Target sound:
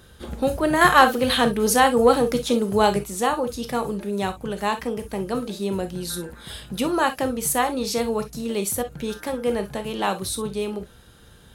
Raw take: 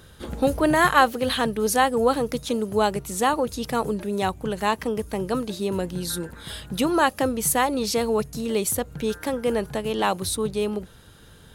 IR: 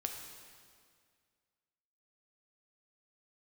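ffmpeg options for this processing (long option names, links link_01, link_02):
-filter_complex "[1:a]atrim=start_sample=2205,atrim=end_sample=3087[link_01];[0:a][link_01]afir=irnorm=-1:irlink=0,asettb=1/sr,asplit=3[link_02][link_03][link_04];[link_02]atrim=end=0.814[link_05];[link_03]atrim=start=0.81:end=3.04,asetpts=PTS-STARTPTS,afade=type=in:duration=0.004:curve=qsin,afade=type=out:start_time=2.226:duration=0.004:curve=qsin,acontrast=24[link_06];[link_04]atrim=start=3.036[link_07];[link_05][link_06]acrossfade=duration=0.004:curve1=hsin:curve2=qsin[link_08];[link_08][link_07]acrossfade=duration=0.004:curve1=qsin:curve2=hsin"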